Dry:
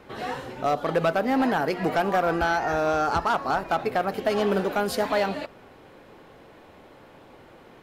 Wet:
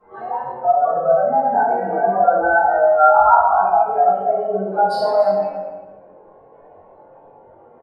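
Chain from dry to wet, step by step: spectral contrast raised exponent 2.8; resonant low shelf 490 Hz -12.5 dB, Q 1.5; doubler 21 ms -5 dB; on a send: echo 0.283 s -14.5 dB; on the sum: shoebox room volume 600 m³, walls mixed, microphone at 9.5 m; gain -10 dB

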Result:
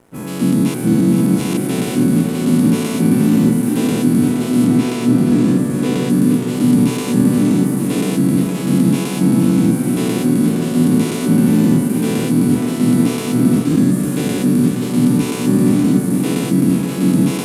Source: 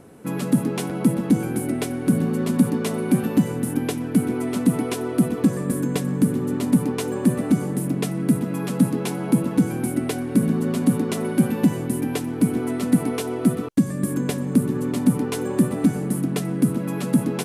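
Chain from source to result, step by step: spectral dilation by 0.24 s; 4.66–6.1 high shelf 9400 Hz -10 dB; crossover distortion -42.5 dBFS; 0.74–1.57 reverse; warbling echo 0.468 s, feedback 59%, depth 90 cents, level -8 dB; gain -2.5 dB

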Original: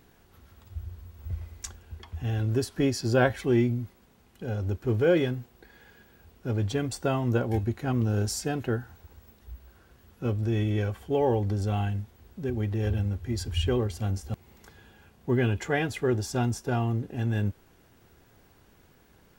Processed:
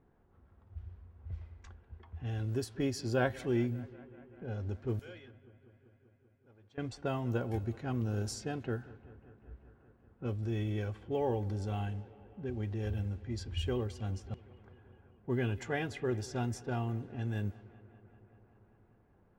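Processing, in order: 4.99–6.78 pre-emphasis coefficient 0.97; low-pass opened by the level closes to 1100 Hz, open at -22.5 dBFS; analogue delay 0.194 s, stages 4096, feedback 77%, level -21 dB; gain -8 dB

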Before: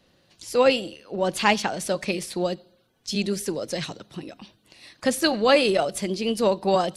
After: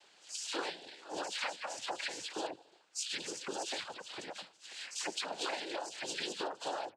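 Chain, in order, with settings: spectral delay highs early, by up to 0.127 s; HPF 750 Hz 12 dB/oct; compressor 10:1, threshold -39 dBFS, peak gain reduction 22.5 dB; noise vocoder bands 8; gain +3.5 dB

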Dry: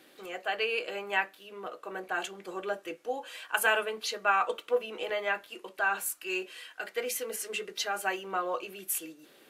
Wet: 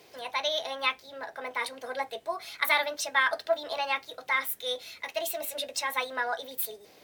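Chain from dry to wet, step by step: band noise 43–470 Hz -68 dBFS; speed mistake 33 rpm record played at 45 rpm; gain +1.5 dB

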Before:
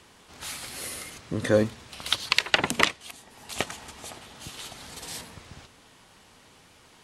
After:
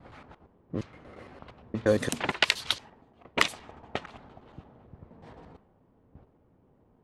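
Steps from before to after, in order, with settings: slices in reverse order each 0.116 s, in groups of 6; low-pass opened by the level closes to 450 Hz, open at -21.5 dBFS; gain -2.5 dB

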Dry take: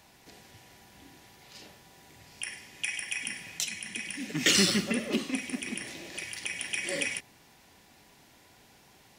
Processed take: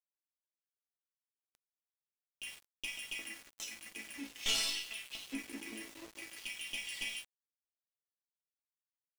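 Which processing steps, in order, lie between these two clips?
dynamic EQ 2400 Hz, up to +4 dB, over -46 dBFS, Q 2.5; LFO high-pass square 0.47 Hz 330–3100 Hz; one-sided clip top -23.5 dBFS; resonator bank A3 major, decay 0.29 s; sample gate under -53.5 dBFS; gain +6 dB

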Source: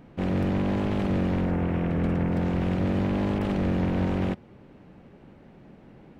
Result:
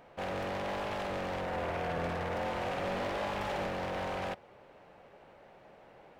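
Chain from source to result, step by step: resonant low shelf 390 Hz -13.5 dB, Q 1.5; hard clip -33 dBFS, distortion -9 dB; 1.46–3.67 flutter echo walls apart 10.1 m, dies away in 0.66 s

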